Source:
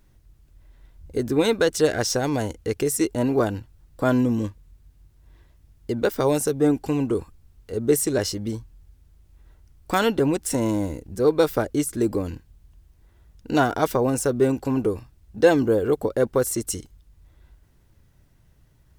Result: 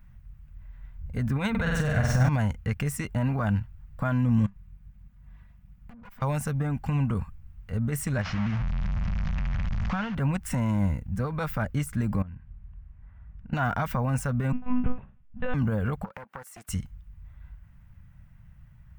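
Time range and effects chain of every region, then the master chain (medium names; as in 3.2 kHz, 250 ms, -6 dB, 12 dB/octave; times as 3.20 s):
1.50–2.29 s: bass shelf 170 Hz +9 dB + band-stop 5 kHz, Q 7.1 + flutter echo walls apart 8.1 m, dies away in 0.79 s
4.46–6.22 s: comb filter that takes the minimum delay 4.1 ms + valve stage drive 27 dB, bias 0.5 + compression 16:1, threshold -45 dBFS
8.21–10.15 s: one-bit delta coder 32 kbps, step -27 dBFS + compression 4:1, threshold -27 dBFS
12.22–13.53 s: low-pass 2.3 kHz + compression 10:1, threshold -41 dBFS
14.52–15.54 s: flutter echo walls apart 3.3 m, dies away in 0.32 s + monotone LPC vocoder at 8 kHz 250 Hz + upward expansion, over -28 dBFS
16.04–16.69 s: high-pass 330 Hz 24 dB/octave + compression, threshold -34 dBFS + loudspeaker Doppler distortion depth 0.37 ms
whole clip: high-order bell 6.9 kHz -14 dB 2.3 oct; peak limiter -16.5 dBFS; FFT filter 200 Hz 0 dB, 360 Hz -27 dB, 610 Hz -11 dB, 1.2 kHz -4 dB; trim +7 dB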